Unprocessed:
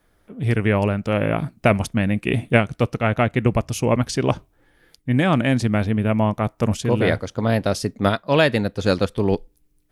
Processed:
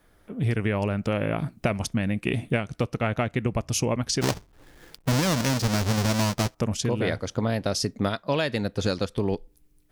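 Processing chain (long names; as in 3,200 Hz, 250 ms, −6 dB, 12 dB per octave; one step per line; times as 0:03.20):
0:04.21–0:06.55: each half-wave held at its own peak
dynamic equaliser 5,500 Hz, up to +8 dB, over −42 dBFS, Q 1.3
downward compressor 6 to 1, threshold −24 dBFS, peak gain reduction 14.5 dB
level +2 dB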